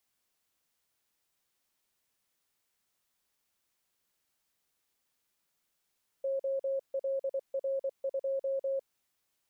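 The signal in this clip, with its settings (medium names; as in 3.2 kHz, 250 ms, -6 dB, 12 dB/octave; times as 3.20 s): Morse "OLR2" 24 wpm 542 Hz -29 dBFS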